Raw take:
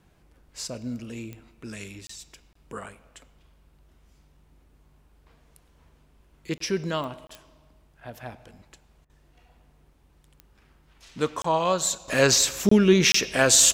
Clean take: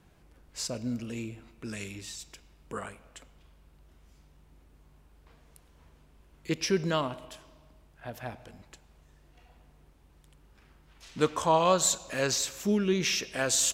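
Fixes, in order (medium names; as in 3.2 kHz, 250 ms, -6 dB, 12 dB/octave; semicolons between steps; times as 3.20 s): de-click; interpolate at 2.07/2.53/6.58/7.27/11.42/12.69/13.12 s, 24 ms; interpolate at 9.05 s, 45 ms; trim 0 dB, from 12.08 s -9.5 dB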